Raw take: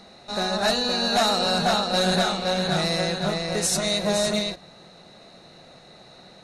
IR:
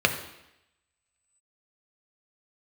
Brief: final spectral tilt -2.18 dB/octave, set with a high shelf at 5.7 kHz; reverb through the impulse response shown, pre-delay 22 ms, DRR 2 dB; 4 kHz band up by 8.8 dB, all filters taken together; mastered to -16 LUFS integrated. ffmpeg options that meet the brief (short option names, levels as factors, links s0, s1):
-filter_complex "[0:a]equalizer=f=4000:t=o:g=6.5,highshelf=f=5700:g=8,asplit=2[s0][s1];[1:a]atrim=start_sample=2205,adelay=22[s2];[s1][s2]afir=irnorm=-1:irlink=0,volume=0.126[s3];[s0][s3]amix=inputs=2:normalize=0,volume=0.944"